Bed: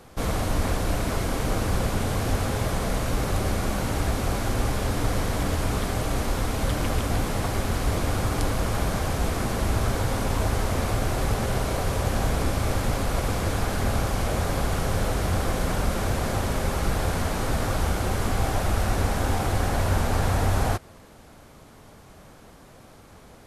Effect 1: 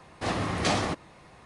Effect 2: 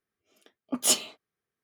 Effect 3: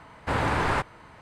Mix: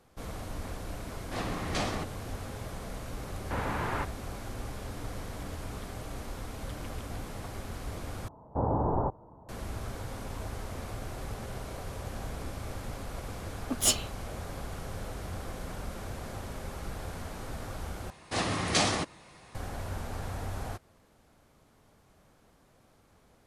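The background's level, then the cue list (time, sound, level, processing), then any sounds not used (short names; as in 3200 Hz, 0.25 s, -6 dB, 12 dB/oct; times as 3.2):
bed -14 dB
1.1 add 1 -6.5 dB
3.23 add 3 -7.5 dB + air absorption 140 m
8.28 replace with 3 -1 dB + steep low-pass 920 Hz
12.98 add 2 -2.5 dB
18.1 replace with 1 -2.5 dB + high shelf 3300 Hz +9 dB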